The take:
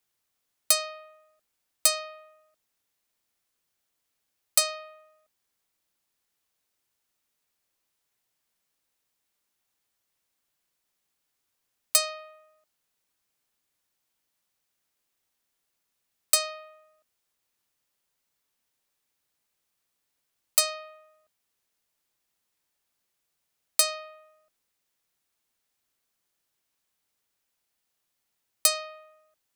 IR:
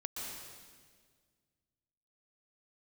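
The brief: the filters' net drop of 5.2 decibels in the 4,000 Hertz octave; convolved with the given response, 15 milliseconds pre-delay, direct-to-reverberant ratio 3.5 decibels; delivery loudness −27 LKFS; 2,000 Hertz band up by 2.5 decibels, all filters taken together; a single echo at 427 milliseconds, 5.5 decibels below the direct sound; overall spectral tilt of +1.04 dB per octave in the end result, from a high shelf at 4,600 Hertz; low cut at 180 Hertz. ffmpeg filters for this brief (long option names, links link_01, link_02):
-filter_complex "[0:a]highpass=180,equalizer=frequency=2000:width_type=o:gain=6,equalizer=frequency=4000:width_type=o:gain=-5.5,highshelf=frequency=4600:gain=-3.5,aecho=1:1:427:0.531,asplit=2[link_01][link_02];[1:a]atrim=start_sample=2205,adelay=15[link_03];[link_02][link_03]afir=irnorm=-1:irlink=0,volume=-4dB[link_04];[link_01][link_04]amix=inputs=2:normalize=0,volume=2dB"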